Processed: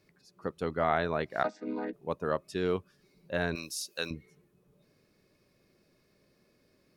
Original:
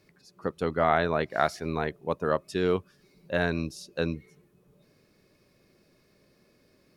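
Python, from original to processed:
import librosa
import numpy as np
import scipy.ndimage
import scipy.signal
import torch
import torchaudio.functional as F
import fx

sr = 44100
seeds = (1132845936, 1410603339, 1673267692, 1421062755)

y = fx.chord_vocoder(x, sr, chord='minor triad', root=56, at=(1.43, 1.93))
y = fx.tilt_eq(y, sr, slope=4.5, at=(3.55, 4.11))
y = F.gain(torch.from_numpy(y), -4.5).numpy()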